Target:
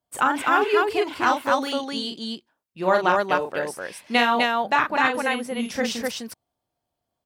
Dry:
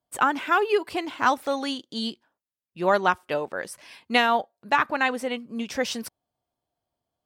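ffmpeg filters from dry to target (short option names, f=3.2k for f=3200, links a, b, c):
-filter_complex "[0:a]aecho=1:1:37.9|253.6:0.562|0.794,asettb=1/sr,asplit=3[a][b][c];[a]atrim=end=5.144[d];[b]atrim=start=5.14:end=5.75,asetpts=PTS-STARTPTS,afade=t=in:d=0.004:c=qsin,afade=t=out:st=0.606:d=0.004:c=qsin,aeval=exprs='val(0)+0.00447*sin(2*PI*11000*n/s)':c=same[e];[c]atrim=start=5.746[f];[d][e]acrossfade=d=0.004:c1=hsin:c2=qsin[g];[g][f]acrossfade=d=0.004:c1=qsin:c2=hsin"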